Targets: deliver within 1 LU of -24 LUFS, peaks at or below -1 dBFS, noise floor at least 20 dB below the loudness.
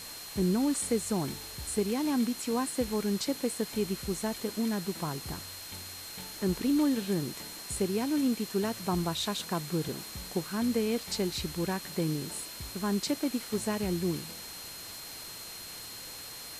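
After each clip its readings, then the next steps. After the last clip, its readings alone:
steady tone 4200 Hz; tone level -46 dBFS; noise floor -44 dBFS; noise floor target -53 dBFS; loudness -32.5 LUFS; peak -16.5 dBFS; loudness target -24.0 LUFS
-> notch 4200 Hz, Q 30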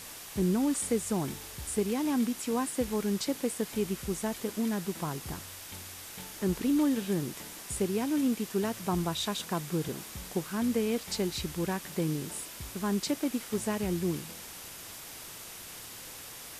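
steady tone none; noise floor -45 dBFS; noise floor target -53 dBFS
-> noise print and reduce 8 dB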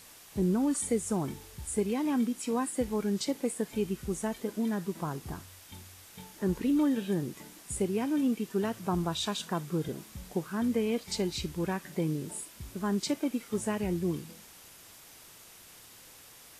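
noise floor -53 dBFS; loudness -32.0 LUFS; peak -17.0 dBFS; loudness target -24.0 LUFS
-> gain +8 dB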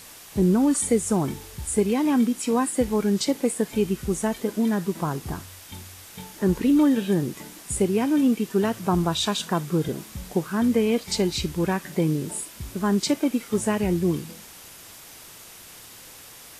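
loudness -24.0 LUFS; peak -9.0 dBFS; noise floor -45 dBFS

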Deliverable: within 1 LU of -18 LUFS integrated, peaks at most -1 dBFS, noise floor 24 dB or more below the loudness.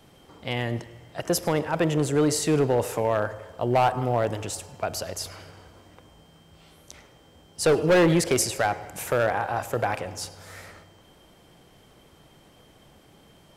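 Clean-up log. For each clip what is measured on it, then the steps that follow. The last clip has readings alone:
clipped 0.8%; flat tops at -14.5 dBFS; loudness -25.0 LUFS; peak -14.5 dBFS; loudness target -18.0 LUFS
-> clip repair -14.5 dBFS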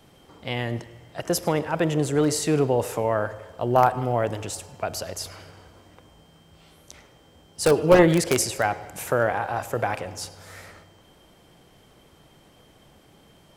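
clipped 0.0%; loudness -24.0 LUFS; peak -5.5 dBFS; loudness target -18.0 LUFS
-> gain +6 dB; limiter -1 dBFS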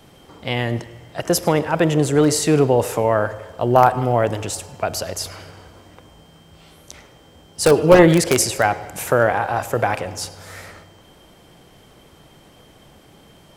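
loudness -18.5 LUFS; peak -1.0 dBFS; noise floor -49 dBFS

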